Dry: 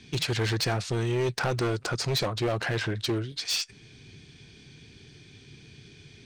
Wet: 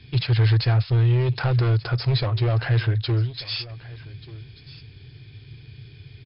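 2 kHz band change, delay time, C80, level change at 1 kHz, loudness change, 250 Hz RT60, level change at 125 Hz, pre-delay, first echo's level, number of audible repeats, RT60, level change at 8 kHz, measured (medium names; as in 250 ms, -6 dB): 0.0 dB, 1186 ms, no reverb, 0.0 dB, +6.5 dB, no reverb, +12.0 dB, no reverb, -18.5 dB, 1, no reverb, under -40 dB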